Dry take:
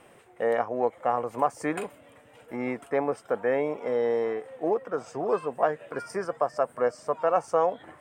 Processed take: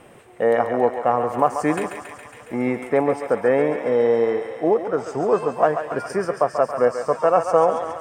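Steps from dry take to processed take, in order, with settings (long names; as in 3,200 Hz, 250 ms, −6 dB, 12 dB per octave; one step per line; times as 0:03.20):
low-shelf EQ 380 Hz +6 dB
on a send: feedback echo with a high-pass in the loop 138 ms, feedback 75%, high-pass 630 Hz, level −6.5 dB
on the sum: level +5 dB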